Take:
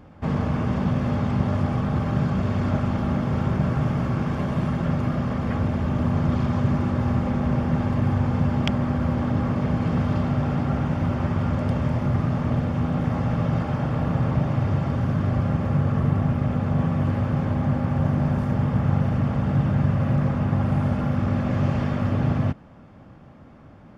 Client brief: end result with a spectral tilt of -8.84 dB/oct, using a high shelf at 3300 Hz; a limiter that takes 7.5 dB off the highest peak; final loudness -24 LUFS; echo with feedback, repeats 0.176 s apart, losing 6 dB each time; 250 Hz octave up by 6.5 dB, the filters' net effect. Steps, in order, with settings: bell 250 Hz +8 dB; high shelf 3300 Hz -6.5 dB; limiter -13 dBFS; feedback echo 0.176 s, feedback 50%, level -6 dB; gain -5.5 dB

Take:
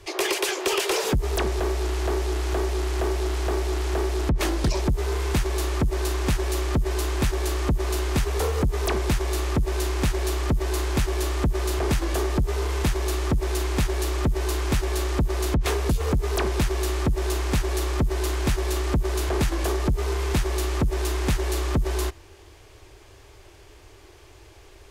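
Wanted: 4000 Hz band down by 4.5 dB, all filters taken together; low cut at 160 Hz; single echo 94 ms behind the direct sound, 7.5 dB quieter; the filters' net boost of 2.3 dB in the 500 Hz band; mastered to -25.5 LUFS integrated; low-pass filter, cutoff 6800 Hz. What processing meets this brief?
HPF 160 Hz; LPF 6800 Hz; bell 500 Hz +3.5 dB; bell 4000 Hz -5.5 dB; echo 94 ms -7.5 dB; gain +1.5 dB

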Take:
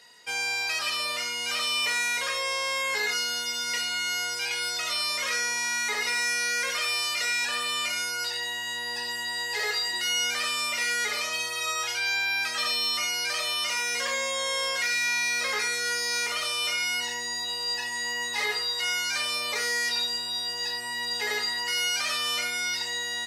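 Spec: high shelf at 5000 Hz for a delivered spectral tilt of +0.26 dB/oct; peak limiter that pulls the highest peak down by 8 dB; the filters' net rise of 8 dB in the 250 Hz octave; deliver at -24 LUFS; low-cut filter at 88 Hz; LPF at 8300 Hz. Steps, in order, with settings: HPF 88 Hz; LPF 8300 Hz; bell 250 Hz +9 dB; high shelf 5000 Hz -3.5 dB; gain +7.5 dB; limiter -18 dBFS

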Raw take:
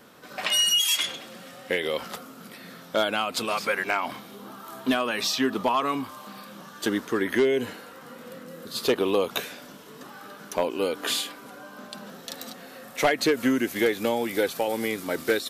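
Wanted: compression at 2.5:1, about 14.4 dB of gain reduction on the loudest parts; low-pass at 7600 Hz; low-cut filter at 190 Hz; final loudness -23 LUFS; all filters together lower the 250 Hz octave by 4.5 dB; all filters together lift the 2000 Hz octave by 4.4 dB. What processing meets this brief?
HPF 190 Hz; LPF 7600 Hz; bell 250 Hz -4.5 dB; bell 2000 Hz +5.5 dB; compressor 2.5:1, threshold -40 dBFS; gain +15.5 dB

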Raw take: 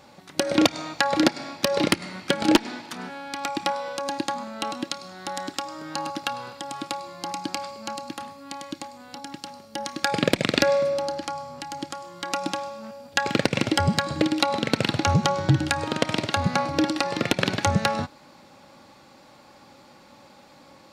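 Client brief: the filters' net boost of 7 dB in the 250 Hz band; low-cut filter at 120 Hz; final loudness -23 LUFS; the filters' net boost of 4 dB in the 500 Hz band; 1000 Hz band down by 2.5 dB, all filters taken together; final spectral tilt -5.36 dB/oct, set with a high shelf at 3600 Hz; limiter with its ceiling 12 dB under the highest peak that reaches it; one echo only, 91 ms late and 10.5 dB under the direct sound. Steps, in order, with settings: HPF 120 Hz; bell 250 Hz +8.5 dB; bell 500 Hz +4 dB; bell 1000 Hz -4.5 dB; high shelf 3600 Hz -8.5 dB; limiter -9.5 dBFS; echo 91 ms -10.5 dB; gain +1.5 dB

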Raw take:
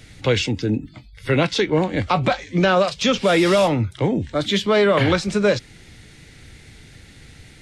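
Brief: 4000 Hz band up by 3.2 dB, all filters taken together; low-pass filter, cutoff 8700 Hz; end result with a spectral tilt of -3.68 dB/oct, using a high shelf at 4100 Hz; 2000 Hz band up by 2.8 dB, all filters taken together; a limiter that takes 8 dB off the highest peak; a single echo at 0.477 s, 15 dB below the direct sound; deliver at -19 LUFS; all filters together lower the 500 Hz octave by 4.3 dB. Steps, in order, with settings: LPF 8700 Hz; bell 500 Hz -5.5 dB; bell 2000 Hz +4 dB; bell 4000 Hz +7 dB; high shelf 4100 Hz -8 dB; limiter -12.5 dBFS; echo 0.477 s -15 dB; gain +3.5 dB

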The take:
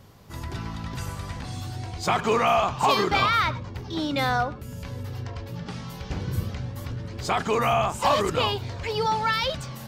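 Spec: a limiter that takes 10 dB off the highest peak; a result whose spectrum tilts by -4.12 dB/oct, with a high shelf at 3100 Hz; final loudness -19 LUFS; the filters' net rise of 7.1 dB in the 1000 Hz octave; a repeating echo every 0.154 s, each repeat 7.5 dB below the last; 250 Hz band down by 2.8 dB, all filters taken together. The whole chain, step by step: bell 250 Hz -4.5 dB; bell 1000 Hz +9 dB; high shelf 3100 Hz +3.5 dB; limiter -13.5 dBFS; feedback echo 0.154 s, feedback 42%, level -7.5 dB; gain +5.5 dB

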